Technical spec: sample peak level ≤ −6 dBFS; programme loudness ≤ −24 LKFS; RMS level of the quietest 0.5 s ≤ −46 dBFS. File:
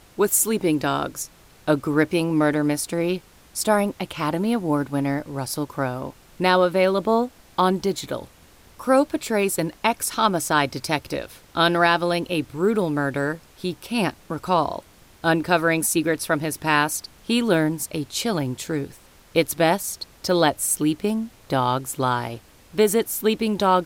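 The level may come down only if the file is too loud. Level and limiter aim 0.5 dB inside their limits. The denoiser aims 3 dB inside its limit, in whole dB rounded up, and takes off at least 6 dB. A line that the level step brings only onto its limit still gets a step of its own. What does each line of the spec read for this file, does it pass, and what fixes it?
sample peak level −4.5 dBFS: out of spec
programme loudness −22.5 LKFS: out of spec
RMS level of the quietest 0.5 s −51 dBFS: in spec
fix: level −2 dB

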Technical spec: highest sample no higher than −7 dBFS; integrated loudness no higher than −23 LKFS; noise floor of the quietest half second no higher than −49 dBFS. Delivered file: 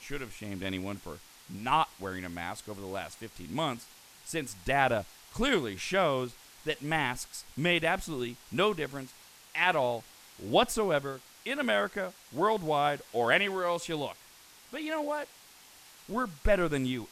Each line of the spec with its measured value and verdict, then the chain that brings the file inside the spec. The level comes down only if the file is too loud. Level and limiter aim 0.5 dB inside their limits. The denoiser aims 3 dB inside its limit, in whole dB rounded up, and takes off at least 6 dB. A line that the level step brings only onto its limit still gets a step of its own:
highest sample −10.0 dBFS: in spec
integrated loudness −31.0 LKFS: in spec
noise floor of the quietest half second −55 dBFS: in spec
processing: no processing needed

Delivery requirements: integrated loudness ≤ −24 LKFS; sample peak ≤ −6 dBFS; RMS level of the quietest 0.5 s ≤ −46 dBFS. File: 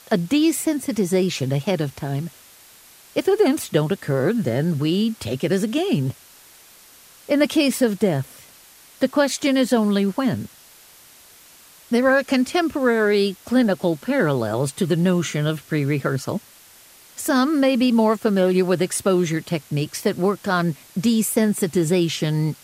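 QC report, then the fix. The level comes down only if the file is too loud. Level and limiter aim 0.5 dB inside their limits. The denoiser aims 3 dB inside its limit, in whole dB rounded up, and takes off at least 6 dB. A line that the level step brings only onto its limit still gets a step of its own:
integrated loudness −21.0 LKFS: out of spec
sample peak −4.5 dBFS: out of spec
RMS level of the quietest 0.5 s −48 dBFS: in spec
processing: level −3.5 dB

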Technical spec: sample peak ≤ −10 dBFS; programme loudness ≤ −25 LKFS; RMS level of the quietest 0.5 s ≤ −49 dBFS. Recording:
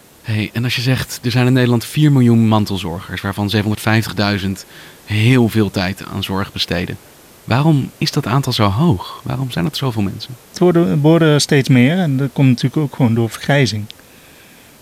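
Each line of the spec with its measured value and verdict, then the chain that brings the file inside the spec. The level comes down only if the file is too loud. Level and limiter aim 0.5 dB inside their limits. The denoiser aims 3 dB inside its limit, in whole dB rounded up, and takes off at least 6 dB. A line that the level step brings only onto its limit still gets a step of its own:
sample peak −1.5 dBFS: out of spec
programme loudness −15.5 LKFS: out of spec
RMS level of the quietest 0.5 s −43 dBFS: out of spec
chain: level −10 dB

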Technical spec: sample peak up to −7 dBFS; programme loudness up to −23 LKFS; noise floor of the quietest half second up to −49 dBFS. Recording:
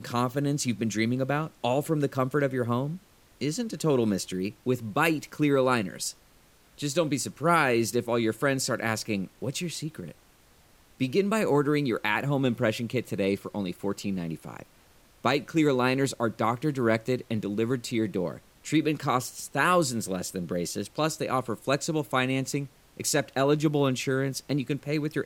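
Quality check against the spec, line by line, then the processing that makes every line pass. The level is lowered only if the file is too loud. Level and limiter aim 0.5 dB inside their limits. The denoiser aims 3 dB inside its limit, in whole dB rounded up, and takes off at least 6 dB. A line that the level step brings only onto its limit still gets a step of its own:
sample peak −9.5 dBFS: in spec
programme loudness −27.5 LKFS: in spec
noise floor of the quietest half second −59 dBFS: in spec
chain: no processing needed

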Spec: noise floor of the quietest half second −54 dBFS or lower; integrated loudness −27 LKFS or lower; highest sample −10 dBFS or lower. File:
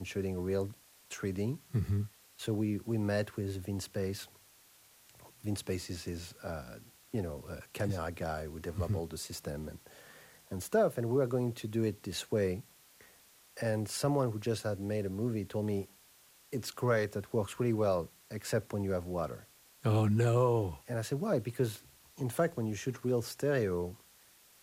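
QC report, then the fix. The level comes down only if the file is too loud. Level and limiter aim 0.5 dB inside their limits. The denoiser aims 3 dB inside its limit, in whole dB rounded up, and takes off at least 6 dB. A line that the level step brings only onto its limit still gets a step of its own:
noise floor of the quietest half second −62 dBFS: in spec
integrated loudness −34.5 LKFS: in spec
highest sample −17.5 dBFS: in spec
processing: no processing needed

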